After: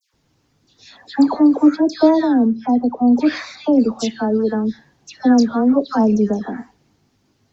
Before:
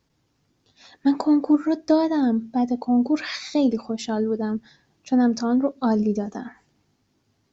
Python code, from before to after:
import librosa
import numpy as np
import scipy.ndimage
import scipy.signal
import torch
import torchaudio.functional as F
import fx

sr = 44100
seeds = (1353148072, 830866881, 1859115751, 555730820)

y = fx.high_shelf(x, sr, hz=3400.0, db=-11.5, at=(2.46, 3.78))
y = fx.dispersion(y, sr, late='lows', ms=137.0, hz=1800.0)
y = F.gain(torch.from_numpy(y), 6.0).numpy()